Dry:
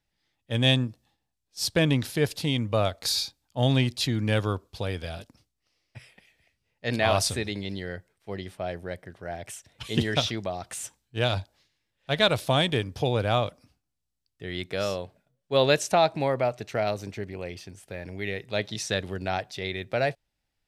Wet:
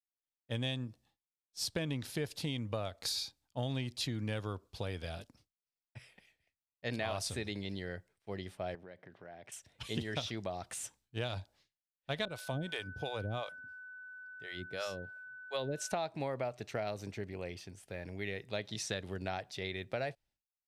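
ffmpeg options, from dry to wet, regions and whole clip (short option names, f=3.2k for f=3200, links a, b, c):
-filter_complex "[0:a]asettb=1/sr,asplit=3[a][b][c];[a]atrim=end=8.754[d];[b]atrim=start=8.75:end=9.52,asetpts=PTS-STARTPTS,afade=t=in:d=0.004:c=qsin,afade=t=out:st=0.766:d=0.004:c=qsin,acompressor=threshold=-41dB:ratio=4:attack=3.2:release=140:knee=1:detection=peak,highpass=140,lowpass=3.7k[e];[c]atrim=start=9.516[f];[d][e]acrossfade=d=0.004:c1=hsin:c2=qsin[g];[g][f]acrossfade=d=0.004:c1=qsin:c2=hsin,asettb=1/sr,asplit=3[h][i][j];[h]atrim=end=12.254[k];[i]atrim=start=12.25:end=15.92,asetpts=PTS-STARTPTS,afade=t=in:d=0.004:c=qsin,afade=t=out:st=3.666:d=0.004:c=qsin,acrossover=split=500[l][m];[l]aeval=exprs='val(0)*(1-1/2+1/2*cos(2*PI*2.9*n/s))':c=same[n];[m]aeval=exprs='val(0)*(1-1/2-1/2*cos(2*PI*2.9*n/s))':c=same[o];[n][o]amix=inputs=2:normalize=0,aeval=exprs='val(0)+0.00891*sin(2*PI*1500*n/s)':c=same[p];[j]atrim=start=15.916[q];[k][p]acrossfade=d=0.004:c1=hsin:c2=qsin[r];[r][q]acrossfade=d=0.004:c1=qsin:c2=hsin,acompressor=threshold=-27dB:ratio=6,equalizer=f=12k:w=5.7:g=-2.5,agate=range=-33dB:threshold=-59dB:ratio=3:detection=peak,volume=-6dB"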